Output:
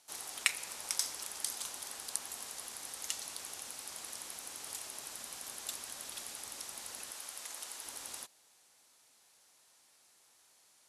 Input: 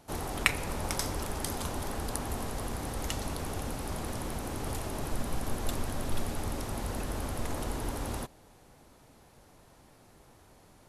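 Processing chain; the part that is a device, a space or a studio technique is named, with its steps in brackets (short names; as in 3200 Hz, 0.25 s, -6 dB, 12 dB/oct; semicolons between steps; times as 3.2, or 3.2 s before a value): piezo pickup straight into a mixer (LPF 8400 Hz 12 dB/oct; differentiator); 7.11–7.86 low shelf 330 Hz -10.5 dB; gain +4.5 dB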